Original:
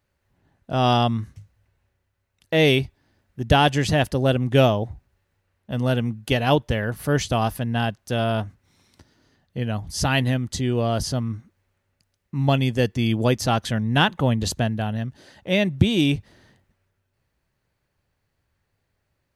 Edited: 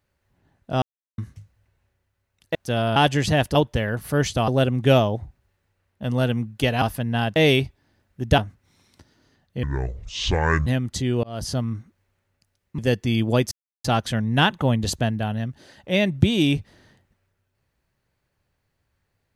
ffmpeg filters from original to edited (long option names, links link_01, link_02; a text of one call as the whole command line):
ffmpeg -i in.wav -filter_complex "[0:a]asplit=15[link_01][link_02][link_03][link_04][link_05][link_06][link_07][link_08][link_09][link_10][link_11][link_12][link_13][link_14][link_15];[link_01]atrim=end=0.82,asetpts=PTS-STARTPTS,afade=type=out:start_time=0.816:duration=0.004:curve=hsin[link_16];[link_02]atrim=start=0.82:end=1.18,asetpts=PTS-STARTPTS,volume=0[link_17];[link_03]atrim=start=1.18:end=2.552,asetpts=PTS-STARTPTS,afade=type=in:duration=0.004:curve=hsin[link_18];[link_04]atrim=start=7.968:end=8.382[link_19];[link_05]atrim=start=3.568:end=4.162[link_20];[link_06]atrim=start=6.498:end=7.432[link_21];[link_07]atrim=start=4.158:end=6.502[link_22];[link_08]atrim=start=7.428:end=7.972[link_23];[link_09]atrim=start=2.548:end=3.572[link_24];[link_10]atrim=start=8.378:end=9.634[link_25];[link_11]atrim=start=9.63:end=10.25,asetpts=PTS-STARTPTS,asetrate=26460,aresample=44100[link_26];[link_12]atrim=start=10.246:end=10.82,asetpts=PTS-STARTPTS,afade=type=out:start_time=0.57:duration=0.004:curve=hsin[link_27];[link_13]atrim=start=10.82:end=12.372,asetpts=PTS-STARTPTS,afade=type=in:duration=0.31[link_28];[link_14]atrim=start=12.698:end=13.43,asetpts=PTS-STARTPTS,afade=type=out:start_time=0.728:duration=0.004:curve=hsin,apad=pad_dur=0.33[link_29];[link_15]atrim=start=13.43,asetpts=PTS-STARTPTS,afade=type=in:duration=0.004:curve=hsin[link_30];[link_16][link_17][link_18]concat=n=3:v=0:a=1[link_31];[link_31][link_19]acrossfade=duration=0.004:curve1=hsin:curve2=hsin[link_32];[link_32][link_20]acrossfade=duration=0.004:curve1=hsin:curve2=hsin[link_33];[link_33][link_21]acrossfade=duration=0.004:curve1=hsin:curve2=hsin[link_34];[link_34][link_22]acrossfade=duration=0.004:curve1=hsin:curve2=hsin[link_35];[link_35][link_23]acrossfade=duration=0.004:curve1=hsin:curve2=hsin[link_36];[link_36][link_24]acrossfade=duration=0.004:curve1=hsin:curve2=hsin[link_37];[link_37][link_25]acrossfade=duration=0.004:curve1=hsin:curve2=hsin[link_38];[link_38][link_26]acrossfade=duration=0.004:curve1=hsin:curve2=hsin[link_39];[link_27][link_28]concat=n=2:v=0:a=1[link_40];[link_39][link_40]acrossfade=duration=0.004:curve1=hsin:curve2=hsin[link_41];[link_29][link_30]concat=n=2:v=0:a=1[link_42];[link_41][link_42]acrossfade=duration=0.004:curve1=hsin:curve2=hsin" out.wav